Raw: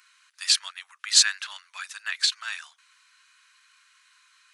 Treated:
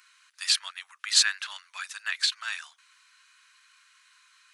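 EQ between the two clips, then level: dynamic EQ 6600 Hz, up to -5 dB, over -32 dBFS, Q 0.96; 0.0 dB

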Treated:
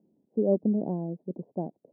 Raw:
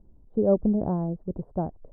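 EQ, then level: running mean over 34 samples; HPF 190 Hz 24 dB/oct; air absorption 250 m; 0.0 dB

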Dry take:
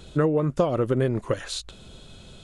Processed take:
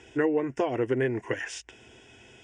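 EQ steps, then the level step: speaker cabinet 120–7900 Hz, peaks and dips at 130 Hz +5 dB, 550 Hz +8 dB, 1400 Hz +6 dB, 1900 Hz +9 dB, 2800 Hz +7 dB, 5400 Hz +10 dB; fixed phaser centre 840 Hz, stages 8; -1.5 dB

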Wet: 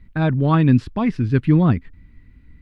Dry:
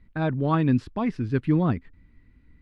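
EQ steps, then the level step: tone controls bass +6 dB, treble -7 dB; high shelf 2500 Hz +9.5 dB; +3.0 dB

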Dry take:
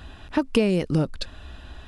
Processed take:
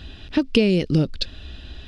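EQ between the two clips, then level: EQ curve 400 Hz 0 dB, 1000 Hz -11 dB, 3200 Hz +4 dB, 4900 Hz +4 dB, 8400 Hz -9 dB; +3.5 dB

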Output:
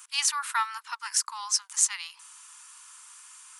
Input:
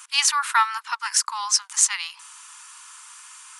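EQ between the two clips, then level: high shelf 7600 Hz +7.5 dB; -8.5 dB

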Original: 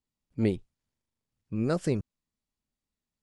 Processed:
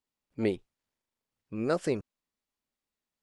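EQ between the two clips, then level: tone controls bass -12 dB, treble -4 dB; +2.5 dB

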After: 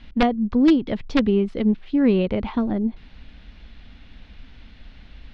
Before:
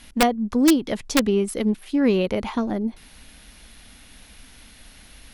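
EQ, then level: LPF 4000 Hz 24 dB/oct; low shelf 250 Hz +10 dB; -3.0 dB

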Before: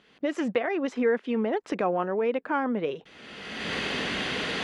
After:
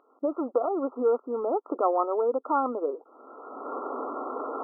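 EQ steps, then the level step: brick-wall FIR band-pass 240–1400 Hz; air absorption 480 m; tilt +4 dB/oct; +6.5 dB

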